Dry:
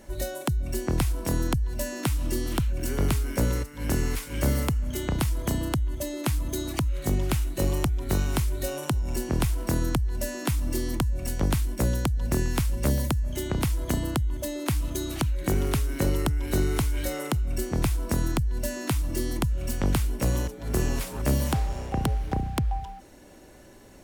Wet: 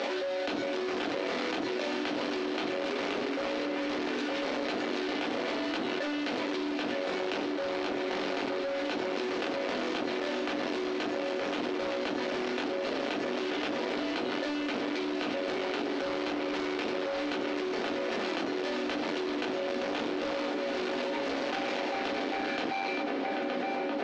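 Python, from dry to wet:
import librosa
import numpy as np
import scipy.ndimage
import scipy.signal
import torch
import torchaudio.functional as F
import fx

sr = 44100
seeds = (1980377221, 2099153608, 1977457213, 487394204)

p1 = scipy.ndimage.median_filter(x, 41, mode='constant')
p2 = p1 + fx.echo_filtered(p1, sr, ms=920, feedback_pct=83, hz=3200.0, wet_db=-13.0, dry=0)
p3 = fx.room_shoebox(p2, sr, seeds[0], volume_m3=120.0, walls='furnished', distance_m=1.9)
p4 = 10.0 ** (-18.5 / 20.0) * (np.abs((p3 / 10.0 ** (-18.5 / 20.0) + 3.0) % 4.0 - 2.0) - 1.0)
p5 = p3 + (p4 * 10.0 ** (-6.5 / 20.0))
p6 = scipy.signal.sosfilt(scipy.signal.butter(4, 320.0, 'highpass', fs=sr, output='sos'), p5)
p7 = fx.peak_eq(p6, sr, hz=3600.0, db=9.0, octaves=2.1)
p8 = 10.0 ** (-24.0 / 20.0) * np.tanh(p7 / 10.0 ** (-24.0 / 20.0))
p9 = scipy.signal.sosfilt(scipy.signal.butter(4, 5500.0, 'lowpass', fs=sr, output='sos'), p8)
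p10 = fx.low_shelf(p9, sr, hz=430.0, db=-8.0)
p11 = fx.hum_notches(p10, sr, base_hz=60, count=7)
p12 = fx.env_flatten(p11, sr, amount_pct=100)
y = p12 * 10.0 ** (-3.0 / 20.0)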